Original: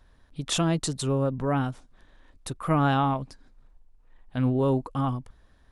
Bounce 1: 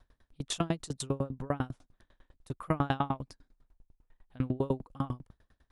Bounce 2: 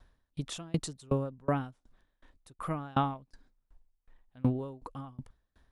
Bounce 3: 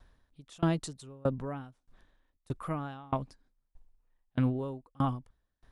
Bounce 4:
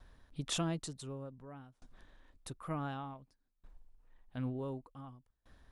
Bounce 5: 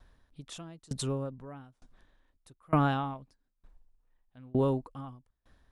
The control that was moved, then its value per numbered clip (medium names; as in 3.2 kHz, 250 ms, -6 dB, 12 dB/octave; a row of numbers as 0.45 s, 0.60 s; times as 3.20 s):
sawtooth tremolo in dB, rate: 10 Hz, 2.7 Hz, 1.6 Hz, 0.55 Hz, 1.1 Hz